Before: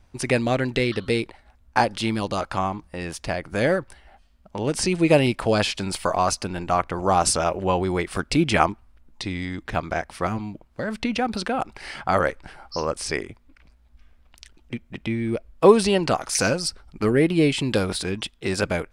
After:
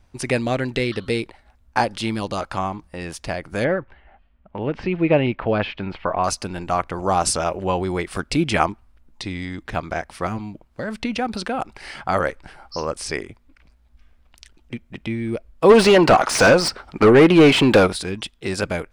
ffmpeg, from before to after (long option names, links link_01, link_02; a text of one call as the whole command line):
ffmpeg -i in.wav -filter_complex "[0:a]asettb=1/sr,asplit=3[link_01][link_02][link_03];[link_01]atrim=end=3.644[link_04];[link_02]atrim=start=3.64:end=6.24,asetpts=PTS-STARTPTS,afade=type=in:duration=0.004:curve=qsin,afade=type=out:start_time=2.596:duration=0.004:curve=qsin,lowpass=frequency=2800:width=0.5412,lowpass=frequency=2800:width=1.3066[link_05];[link_03]atrim=start=6.236[link_06];[link_04][link_05]acrossfade=duration=0.004:curve1=hsin:curve2=qsin[link_07];[link_07][link_06]acrossfade=duration=0.004:curve1=qsin:curve2=hsin,asplit=3[link_08][link_09][link_10];[link_08]afade=type=out:start_time=15.69:duration=0.02[link_11];[link_09]asplit=2[link_12][link_13];[link_13]highpass=frequency=720:poles=1,volume=27dB,asoftclip=type=tanh:threshold=-1.5dB[link_14];[link_12][link_14]amix=inputs=2:normalize=0,lowpass=frequency=1400:poles=1,volume=-6dB,afade=type=in:start_time=15.69:duration=0.02,afade=type=out:start_time=17.86:duration=0.02[link_15];[link_10]afade=type=in:start_time=17.86:duration=0.02[link_16];[link_11][link_15][link_16]amix=inputs=3:normalize=0" out.wav